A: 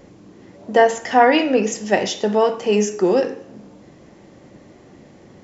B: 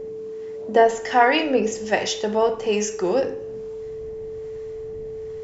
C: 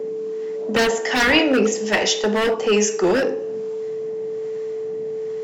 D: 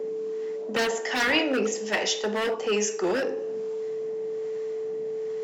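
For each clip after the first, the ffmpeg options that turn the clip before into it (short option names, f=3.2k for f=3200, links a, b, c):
-filter_complex "[0:a]asubboost=boost=11:cutoff=75,acrossover=split=790[a][b];[a]aeval=exprs='val(0)*(1-0.5/2+0.5/2*cos(2*PI*1.2*n/s))':c=same[c];[b]aeval=exprs='val(0)*(1-0.5/2-0.5/2*cos(2*PI*1.2*n/s))':c=same[d];[c][d]amix=inputs=2:normalize=0,aeval=exprs='val(0)+0.0316*sin(2*PI*440*n/s)':c=same"
-filter_complex "[0:a]highpass=f=170:w=0.5412,highpass=f=170:w=1.3066,acrossover=split=380|1400[a][b][c];[b]aeval=exprs='0.0668*(abs(mod(val(0)/0.0668+3,4)-2)-1)':c=same[d];[a][d][c]amix=inputs=3:normalize=0,volume=6dB"
-af "lowshelf=f=140:g=-11.5,areverse,acompressor=mode=upward:threshold=-20dB:ratio=2.5,areverse,volume=-6.5dB"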